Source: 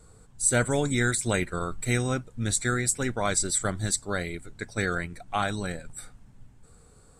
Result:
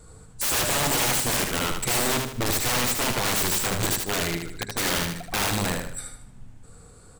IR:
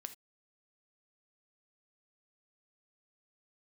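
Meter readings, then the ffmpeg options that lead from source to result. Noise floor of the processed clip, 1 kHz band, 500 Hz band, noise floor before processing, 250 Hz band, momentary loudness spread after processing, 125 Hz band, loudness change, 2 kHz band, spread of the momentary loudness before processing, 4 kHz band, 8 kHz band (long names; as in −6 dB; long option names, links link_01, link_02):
−48 dBFS, +4.0 dB, 0.0 dB, −55 dBFS, −0.5 dB, 8 LU, −1.5 dB, +3.5 dB, +2.5 dB, 11 LU, +10.0 dB, +2.5 dB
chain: -filter_complex "[0:a]bandreject=frequency=200.7:width_type=h:width=4,bandreject=frequency=401.4:width_type=h:width=4,bandreject=frequency=602.1:width_type=h:width=4,bandreject=frequency=802.8:width_type=h:width=4,bandreject=frequency=1003.5:width_type=h:width=4,aeval=exprs='(mod(16.8*val(0)+1,2)-1)/16.8':channel_layout=same,asplit=2[link_01][link_02];[link_02]aecho=0:1:77|154|231|308|385:0.562|0.214|0.0812|0.0309|0.0117[link_03];[link_01][link_03]amix=inputs=2:normalize=0,volume=5dB"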